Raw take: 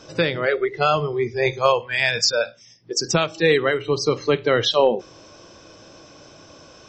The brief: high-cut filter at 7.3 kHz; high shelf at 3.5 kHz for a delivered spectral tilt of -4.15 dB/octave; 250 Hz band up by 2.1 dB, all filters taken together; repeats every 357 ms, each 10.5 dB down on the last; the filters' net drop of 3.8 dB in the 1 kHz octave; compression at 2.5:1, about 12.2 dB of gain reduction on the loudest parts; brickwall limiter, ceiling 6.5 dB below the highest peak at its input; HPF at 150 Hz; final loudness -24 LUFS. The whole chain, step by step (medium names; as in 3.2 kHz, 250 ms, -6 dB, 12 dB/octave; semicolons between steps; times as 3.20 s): high-pass 150 Hz; low-pass 7.3 kHz; peaking EQ 250 Hz +4.5 dB; peaking EQ 1 kHz -4.5 dB; treble shelf 3.5 kHz -8 dB; compression 2.5:1, threshold -32 dBFS; peak limiter -22.5 dBFS; feedback delay 357 ms, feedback 30%, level -10.5 dB; trim +9 dB